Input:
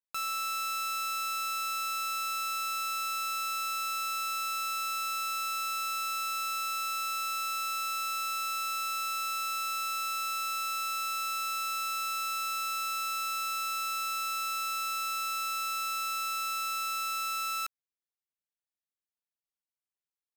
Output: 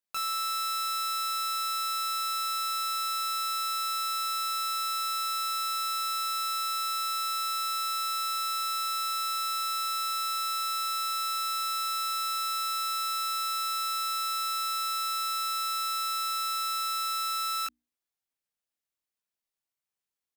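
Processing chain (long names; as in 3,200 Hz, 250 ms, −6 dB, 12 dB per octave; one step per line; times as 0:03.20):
mains-hum notches 60/120/180/240/300/360 Hz
double-tracking delay 21 ms −2.5 dB
level +1.5 dB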